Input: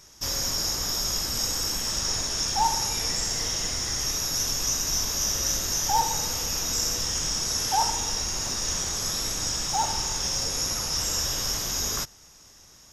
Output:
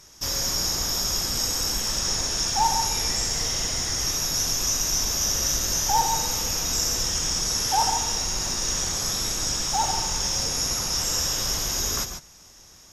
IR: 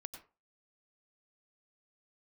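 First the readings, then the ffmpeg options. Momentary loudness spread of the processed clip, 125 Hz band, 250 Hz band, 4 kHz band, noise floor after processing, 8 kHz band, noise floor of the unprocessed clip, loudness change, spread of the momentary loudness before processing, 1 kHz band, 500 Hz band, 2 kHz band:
3 LU, +2.5 dB, +2.5 dB, +2.0 dB, −50 dBFS, +2.0 dB, −52 dBFS, +2.0 dB, 3 LU, +2.0 dB, +2.0 dB, +2.0 dB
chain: -filter_complex "[1:a]atrim=start_sample=2205,afade=type=out:start_time=0.15:duration=0.01,atrim=end_sample=7056,asetrate=29547,aresample=44100[link_01];[0:a][link_01]afir=irnorm=-1:irlink=0,volume=4.5dB"

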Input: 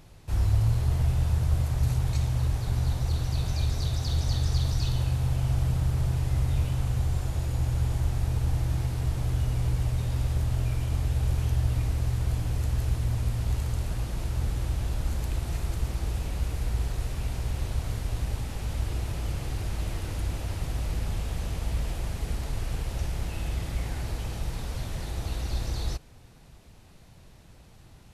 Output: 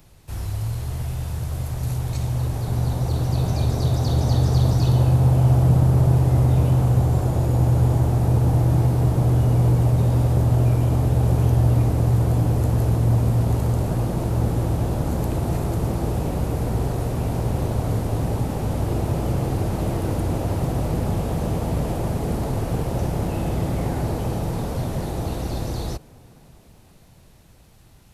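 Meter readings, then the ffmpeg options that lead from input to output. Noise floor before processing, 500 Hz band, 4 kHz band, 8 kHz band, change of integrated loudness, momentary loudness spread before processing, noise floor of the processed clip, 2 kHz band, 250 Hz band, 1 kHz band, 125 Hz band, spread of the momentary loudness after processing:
−52 dBFS, +14.5 dB, can't be measured, +3.5 dB, +8.0 dB, 7 LU, −50 dBFS, +3.0 dB, +14.0 dB, +12.0 dB, +8.5 dB, 10 LU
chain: -filter_complex "[0:a]highshelf=frequency=11000:gain=12,acrossover=split=110|1000|1800[link_01][link_02][link_03][link_04];[link_01]alimiter=level_in=3dB:limit=-24dB:level=0:latency=1,volume=-3dB[link_05];[link_02]dynaudnorm=framelen=350:gausssize=17:maxgain=16dB[link_06];[link_05][link_06][link_03][link_04]amix=inputs=4:normalize=0"

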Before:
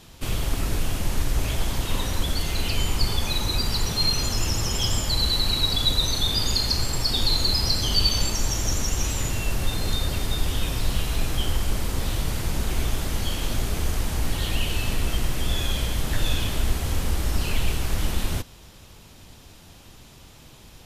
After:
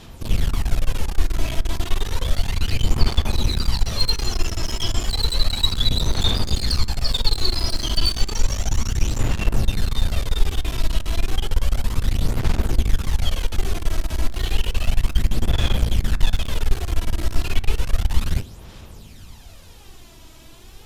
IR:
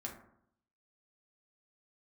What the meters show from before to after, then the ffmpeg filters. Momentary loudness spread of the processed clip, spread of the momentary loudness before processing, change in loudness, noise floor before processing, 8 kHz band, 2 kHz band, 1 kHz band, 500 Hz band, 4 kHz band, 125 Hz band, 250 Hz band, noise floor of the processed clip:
6 LU, 7 LU, +1.0 dB, −48 dBFS, −3.5 dB, −0.5 dB, 0.0 dB, +0.5 dB, −1.0 dB, +3.0 dB, +1.0 dB, −43 dBFS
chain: -filter_complex "[0:a]acrossover=split=6300[link_01][link_02];[link_02]acompressor=threshold=-42dB:ratio=4:attack=1:release=60[link_03];[link_01][link_03]amix=inputs=2:normalize=0,lowshelf=frequency=72:gain=3,aphaser=in_gain=1:out_gain=1:delay=3.1:decay=0.52:speed=0.32:type=sinusoidal,aeval=exprs='clip(val(0),-1,0.0596)':channel_layout=same,asplit=2[link_04][link_05];[1:a]atrim=start_sample=2205[link_06];[link_05][link_06]afir=irnorm=-1:irlink=0,volume=-10dB[link_07];[link_04][link_07]amix=inputs=2:normalize=0,volume=-1dB"

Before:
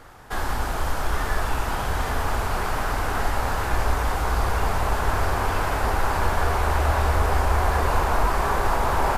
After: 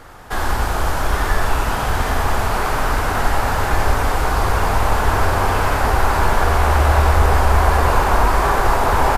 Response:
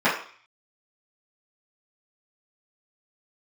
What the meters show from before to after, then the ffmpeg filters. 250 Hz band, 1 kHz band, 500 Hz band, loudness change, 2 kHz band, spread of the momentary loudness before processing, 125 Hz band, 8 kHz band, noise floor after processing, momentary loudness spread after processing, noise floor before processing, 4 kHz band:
+6.5 dB, +6.5 dB, +6.5 dB, +6.5 dB, +6.5 dB, 5 LU, +6.5 dB, +6.0 dB, −21 dBFS, 6 LU, −27 dBFS, +6.5 dB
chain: -filter_complex "[0:a]asplit=2[link_01][link_02];[link_02]adelay=93.29,volume=-6dB,highshelf=frequency=4000:gain=-2.1[link_03];[link_01][link_03]amix=inputs=2:normalize=0,volume=5.5dB"

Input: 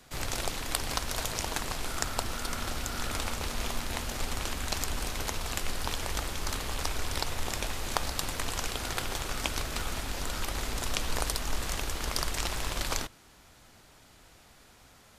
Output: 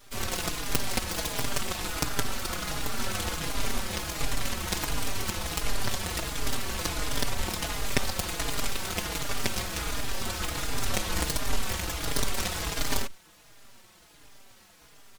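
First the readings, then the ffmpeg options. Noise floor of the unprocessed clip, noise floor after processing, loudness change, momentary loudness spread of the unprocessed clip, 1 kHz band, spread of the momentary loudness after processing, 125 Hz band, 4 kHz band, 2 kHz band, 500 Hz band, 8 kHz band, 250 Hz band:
−57 dBFS, −56 dBFS, +2.5 dB, 3 LU, +1.0 dB, 3 LU, +2.5 dB, +2.0 dB, +2.5 dB, +2.5 dB, +2.5 dB, +4.5 dB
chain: -filter_complex "[0:a]aeval=exprs='abs(val(0))':channel_layout=same,asplit=2[link_01][link_02];[link_02]adelay=4.5,afreqshift=-1.4[link_03];[link_01][link_03]amix=inputs=2:normalize=1,volume=7.5dB"

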